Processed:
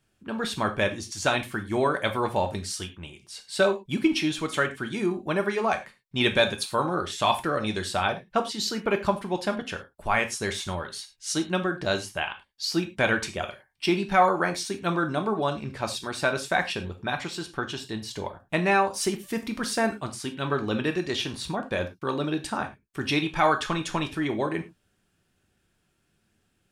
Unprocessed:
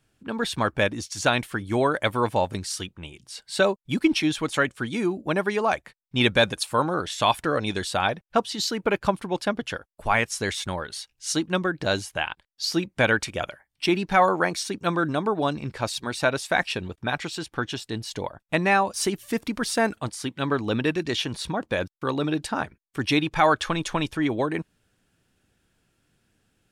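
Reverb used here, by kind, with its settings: non-linear reverb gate 0.13 s falling, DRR 5 dB; gain -3 dB

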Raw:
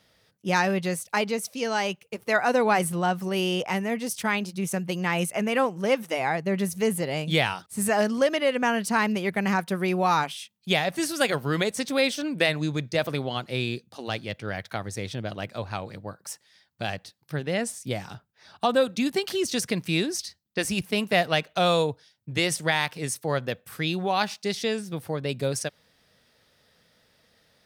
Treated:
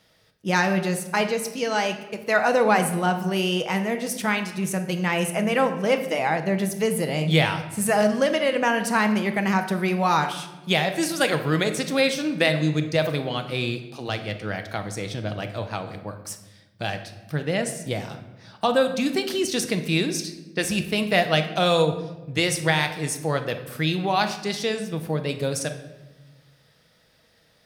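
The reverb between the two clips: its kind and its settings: shoebox room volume 570 m³, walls mixed, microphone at 0.63 m; gain +1.5 dB

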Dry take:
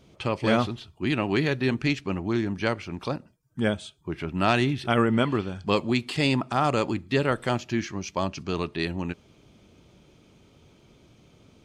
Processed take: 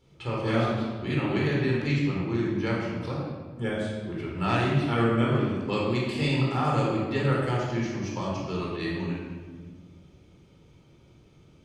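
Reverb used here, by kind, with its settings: shoebox room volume 1400 m³, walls mixed, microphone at 4.2 m; gain -10.5 dB

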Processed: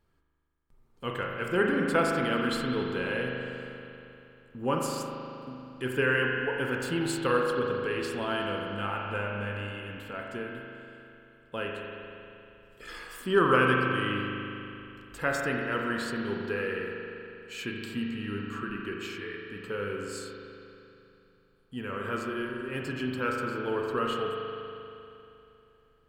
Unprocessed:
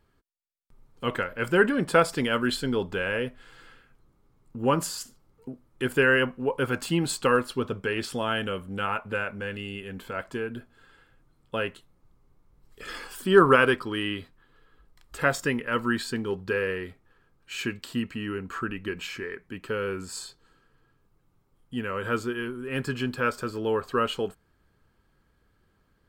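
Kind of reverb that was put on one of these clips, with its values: spring tank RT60 2.9 s, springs 39 ms, chirp 55 ms, DRR -0.5 dB; gain -6 dB

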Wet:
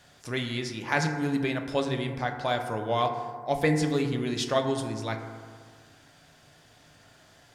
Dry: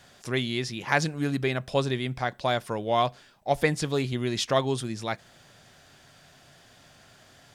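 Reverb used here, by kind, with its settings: FDN reverb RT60 1.8 s, low-frequency decay 1×, high-frequency decay 0.3×, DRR 4 dB; gain -3 dB

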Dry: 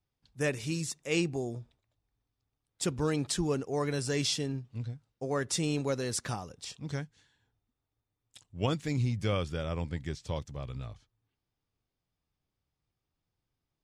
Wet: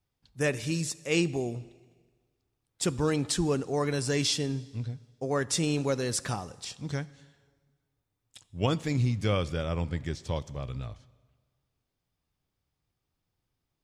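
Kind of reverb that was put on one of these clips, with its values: plate-style reverb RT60 1.5 s, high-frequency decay 0.95×, DRR 18 dB; gain +3 dB

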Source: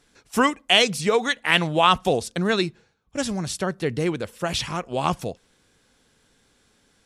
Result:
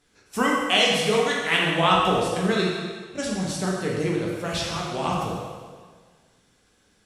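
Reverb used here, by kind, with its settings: plate-style reverb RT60 1.6 s, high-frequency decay 0.95×, DRR -4 dB; gain -6 dB

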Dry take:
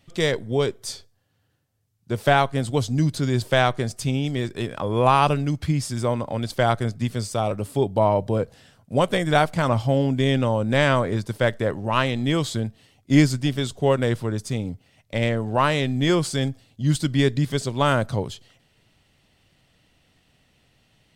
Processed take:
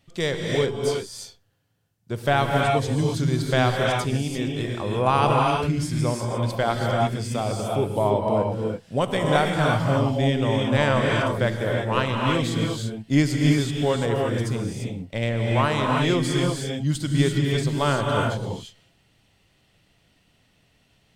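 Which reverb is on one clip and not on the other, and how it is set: non-linear reverb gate 0.37 s rising, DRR -0.5 dB; gain -3.5 dB

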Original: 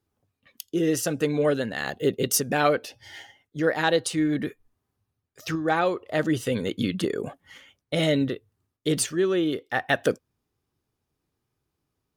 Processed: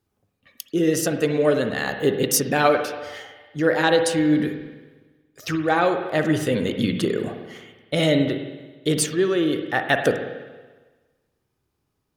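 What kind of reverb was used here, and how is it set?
spring tank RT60 1.3 s, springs 46/56 ms, chirp 55 ms, DRR 6 dB; gain +3 dB

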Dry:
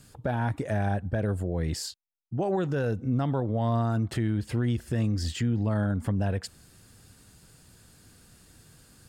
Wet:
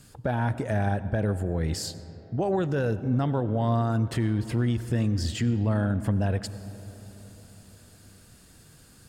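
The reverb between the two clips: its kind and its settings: digital reverb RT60 4.2 s, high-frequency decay 0.35×, pre-delay 50 ms, DRR 14 dB; gain +1.5 dB

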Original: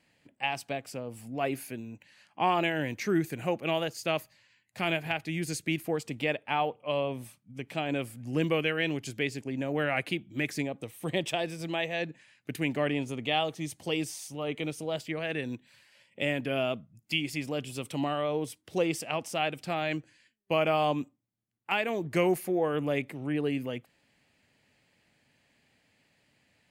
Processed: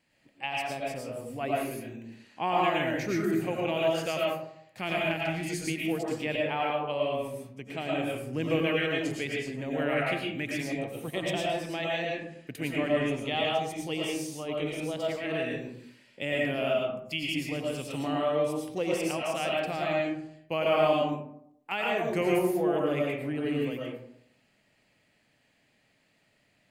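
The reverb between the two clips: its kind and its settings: digital reverb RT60 0.72 s, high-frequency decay 0.45×, pre-delay 70 ms, DRR -3.5 dB; gain -4 dB

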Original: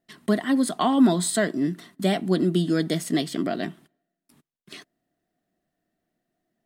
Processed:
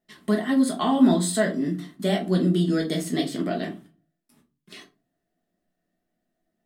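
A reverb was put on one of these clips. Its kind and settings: shoebox room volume 120 m³, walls furnished, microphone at 1.4 m; gain -4 dB

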